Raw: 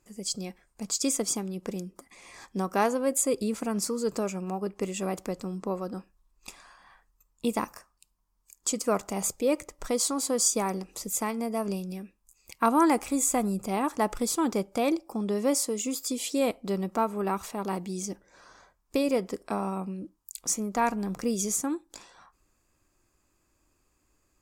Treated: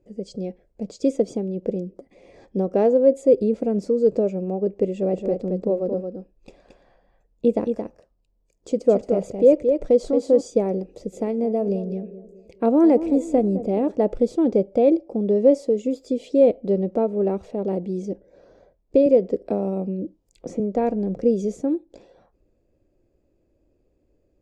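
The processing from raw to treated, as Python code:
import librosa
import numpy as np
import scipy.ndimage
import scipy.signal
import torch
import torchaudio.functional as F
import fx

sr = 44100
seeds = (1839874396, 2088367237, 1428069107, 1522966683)

y = fx.echo_single(x, sr, ms=223, db=-6.0, at=(4.91, 10.41))
y = fx.echo_banded(y, sr, ms=211, feedback_pct=48, hz=390.0, wet_db=-12, at=(11.12, 13.9), fade=0.02)
y = fx.band_squash(y, sr, depth_pct=40, at=(19.06, 20.6))
y = scipy.signal.sosfilt(scipy.signal.butter(2, 3800.0, 'lowpass', fs=sr, output='sos'), y)
y = fx.low_shelf_res(y, sr, hz=770.0, db=12.5, q=3.0)
y = y * 10.0 ** (-7.0 / 20.0)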